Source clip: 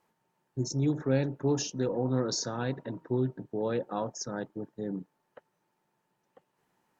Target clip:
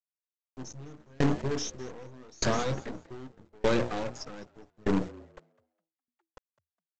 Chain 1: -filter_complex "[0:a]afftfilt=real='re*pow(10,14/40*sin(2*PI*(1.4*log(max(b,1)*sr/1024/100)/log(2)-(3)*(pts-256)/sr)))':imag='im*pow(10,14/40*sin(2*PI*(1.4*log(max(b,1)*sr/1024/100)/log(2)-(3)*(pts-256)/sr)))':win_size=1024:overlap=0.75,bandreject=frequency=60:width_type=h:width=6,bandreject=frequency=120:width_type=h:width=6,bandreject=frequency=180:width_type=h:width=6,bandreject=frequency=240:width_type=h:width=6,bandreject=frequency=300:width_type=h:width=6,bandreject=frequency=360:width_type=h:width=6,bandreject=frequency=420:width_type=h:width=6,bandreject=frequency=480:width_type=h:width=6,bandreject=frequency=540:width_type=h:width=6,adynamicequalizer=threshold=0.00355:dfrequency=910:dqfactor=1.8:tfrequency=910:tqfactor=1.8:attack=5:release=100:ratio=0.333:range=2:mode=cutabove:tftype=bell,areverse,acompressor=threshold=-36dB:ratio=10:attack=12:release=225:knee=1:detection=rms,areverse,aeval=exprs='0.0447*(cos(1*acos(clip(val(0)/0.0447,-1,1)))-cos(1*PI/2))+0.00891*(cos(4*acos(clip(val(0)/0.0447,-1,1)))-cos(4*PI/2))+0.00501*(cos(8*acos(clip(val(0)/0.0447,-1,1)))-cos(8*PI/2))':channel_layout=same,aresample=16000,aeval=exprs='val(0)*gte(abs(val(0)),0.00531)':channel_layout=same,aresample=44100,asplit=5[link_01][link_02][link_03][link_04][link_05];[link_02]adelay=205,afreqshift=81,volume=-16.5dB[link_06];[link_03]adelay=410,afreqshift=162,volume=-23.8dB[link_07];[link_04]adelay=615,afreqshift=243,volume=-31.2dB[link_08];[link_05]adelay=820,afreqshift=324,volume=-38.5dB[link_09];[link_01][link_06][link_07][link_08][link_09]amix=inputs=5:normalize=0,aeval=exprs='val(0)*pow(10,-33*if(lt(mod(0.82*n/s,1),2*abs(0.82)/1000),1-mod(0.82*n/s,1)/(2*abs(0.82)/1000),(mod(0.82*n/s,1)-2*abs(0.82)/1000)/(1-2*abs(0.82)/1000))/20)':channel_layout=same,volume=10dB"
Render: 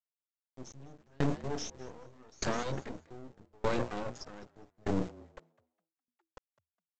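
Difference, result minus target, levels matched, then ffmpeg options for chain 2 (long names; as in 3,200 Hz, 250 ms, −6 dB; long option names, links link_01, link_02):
downward compressor: peak gain reduction +6.5 dB
-filter_complex "[0:a]afftfilt=real='re*pow(10,14/40*sin(2*PI*(1.4*log(max(b,1)*sr/1024/100)/log(2)-(3)*(pts-256)/sr)))':imag='im*pow(10,14/40*sin(2*PI*(1.4*log(max(b,1)*sr/1024/100)/log(2)-(3)*(pts-256)/sr)))':win_size=1024:overlap=0.75,bandreject=frequency=60:width_type=h:width=6,bandreject=frequency=120:width_type=h:width=6,bandreject=frequency=180:width_type=h:width=6,bandreject=frequency=240:width_type=h:width=6,bandreject=frequency=300:width_type=h:width=6,bandreject=frequency=360:width_type=h:width=6,bandreject=frequency=420:width_type=h:width=6,bandreject=frequency=480:width_type=h:width=6,bandreject=frequency=540:width_type=h:width=6,adynamicequalizer=threshold=0.00355:dfrequency=910:dqfactor=1.8:tfrequency=910:tqfactor=1.8:attack=5:release=100:ratio=0.333:range=2:mode=cutabove:tftype=bell,areverse,acompressor=threshold=-29dB:ratio=10:attack=12:release=225:knee=1:detection=rms,areverse,aeval=exprs='0.0447*(cos(1*acos(clip(val(0)/0.0447,-1,1)))-cos(1*PI/2))+0.00891*(cos(4*acos(clip(val(0)/0.0447,-1,1)))-cos(4*PI/2))+0.00501*(cos(8*acos(clip(val(0)/0.0447,-1,1)))-cos(8*PI/2))':channel_layout=same,aresample=16000,aeval=exprs='val(0)*gte(abs(val(0)),0.00531)':channel_layout=same,aresample=44100,asplit=5[link_01][link_02][link_03][link_04][link_05];[link_02]adelay=205,afreqshift=81,volume=-16.5dB[link_06];[link_03]adelay=410,afreqshift=162,volume=-23.8dB[link_07];[link_04]adelay=615,afreqshift=243,volume=-31.2dB[link_08];[link_05]adelay=820,afreqshift=324,volume=-38.5dB[link_09];[link_01][link_06][link_07][link_08][link_09]amix=inputs=5:normalize=0,aeval=exprs='val(0)*pow(10,-33*if(lt(mod(0.82*n/s,1),2*abs(0.82)/1000),1-mod(0.82*n/s,1)/(2*abs(0.82)/1000),(mod(0.82*n/s,1)-2*abs(0.82)/1000)/(1-2*abs(0.82)/1000))/20)':channel_layout=same,volume=10dB"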